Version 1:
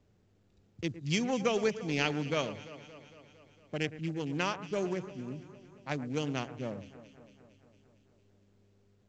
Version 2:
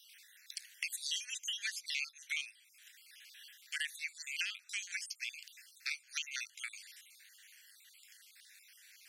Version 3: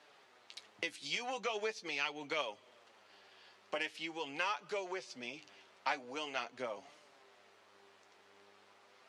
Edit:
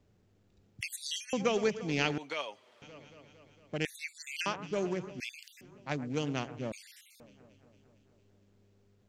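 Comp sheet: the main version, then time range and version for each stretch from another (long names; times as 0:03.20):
1
0:00.81–0:01.33: punch in from 2
0:02.18–0:02.82: punch in from 3
0:03.85–0:04.46: punch in from 2
0:05.20–0:05.61: punch in from 2
0:06.72–0:07.20: punch in from 2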